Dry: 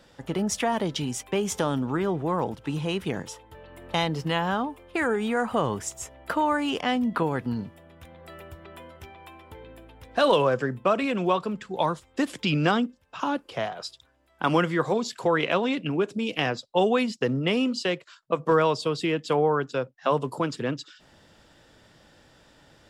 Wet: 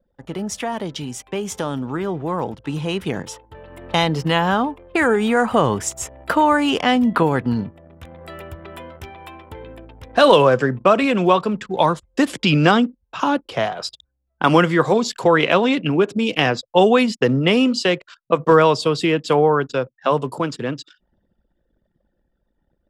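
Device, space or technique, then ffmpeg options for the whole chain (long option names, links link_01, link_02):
voice memo with heavy noise removal: -af "anlmdn=0.01,dynaudnorm=framelen=370:gausssize=17:maxgain=11.5dB"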